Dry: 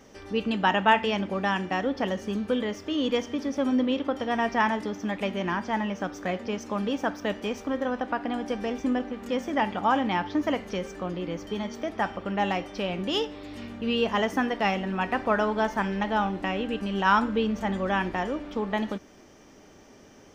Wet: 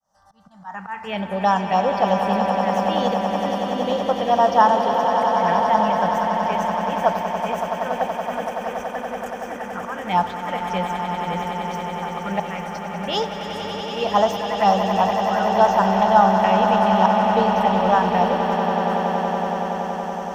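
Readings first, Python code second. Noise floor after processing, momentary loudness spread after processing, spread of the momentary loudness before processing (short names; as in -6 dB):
-33 dBFS, 12 LU, 8 LU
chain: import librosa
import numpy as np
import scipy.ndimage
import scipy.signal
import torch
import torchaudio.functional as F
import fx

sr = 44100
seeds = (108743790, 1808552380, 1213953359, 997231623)

p1 = fx.fade_in_head(x, sr, length_s=1.45)
p2 = fx.auto_swell(p1, sr, attack_ms=321.0)
p3 = fx.env_phaser(p2, sr, low_hz=400.0, high_hz=2300.0, full_db=-22.0)
p4 = fx.curve_eq(p3, sr, hz=(110.0, 180.0, 290.0, 510.0, 730.0, 2900.0, 8600.0), db=(0, 7, -8, 8, 15, 4, 11))
y = p4 + fx.echo_swell(p4, sr, ms=94, loudest=8, wet_db=-10.0, dry=0)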